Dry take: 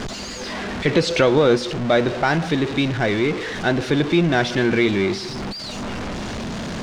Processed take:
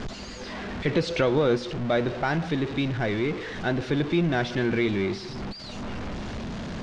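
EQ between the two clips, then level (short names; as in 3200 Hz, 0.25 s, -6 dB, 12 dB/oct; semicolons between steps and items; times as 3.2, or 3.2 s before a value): air absorption 65 m; low shelf 120 Hz +6 dB; -7.0 dB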